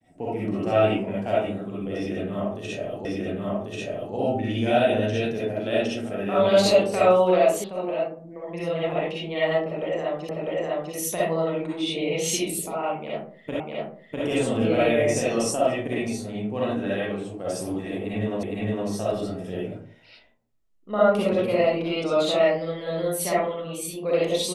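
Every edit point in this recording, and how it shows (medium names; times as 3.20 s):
3.05 s: repeat of the last 1.09 s
7.64 s: sound stops dead
10.29 s: repeat of the last 0.65 s
13.60 s: repeat of the last 0.65 s
18.43 s: repeat of the last 0.46 s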